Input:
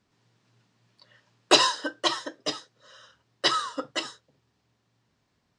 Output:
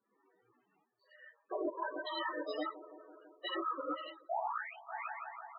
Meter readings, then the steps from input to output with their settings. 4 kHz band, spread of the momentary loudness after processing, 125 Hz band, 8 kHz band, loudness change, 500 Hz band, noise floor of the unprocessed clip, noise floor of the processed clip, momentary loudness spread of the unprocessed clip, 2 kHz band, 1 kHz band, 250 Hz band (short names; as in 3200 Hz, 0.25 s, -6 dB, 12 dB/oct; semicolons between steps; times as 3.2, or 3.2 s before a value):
-20.5 dB, 18 LU, under -30 dB, under -40 dB, -14.5 dB, -8.0 dB, -74 dBFS, -80 dBFS, 14 LU, -11.0 dB, -8.0 dB, -8.5 dB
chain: painted sound rise, 4.29–4.73, 630–4400 Hz -17 dBFS; step gate "xxxxx.x..." 145 bpm -12 dB; non-linear reverb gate 0.14 s rising, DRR -7.5 dB; chorus voices 2, 1 Hz, delay 17 ms, depth 3.8 ms; tone controls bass -14 dB, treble -9 dB; darkening echo 0.166 s, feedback 76%, low-pass 2500 Hz, level -21 dB; treble ducked by the level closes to 350 Hz, closed at -15 dBFS; bell 120 Hz -2 dB 0.89 oct; loudest bins only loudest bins 16; reverse; compressor 6:1, threshold -35 dBFS, peak gain reduction 16 dB; reverse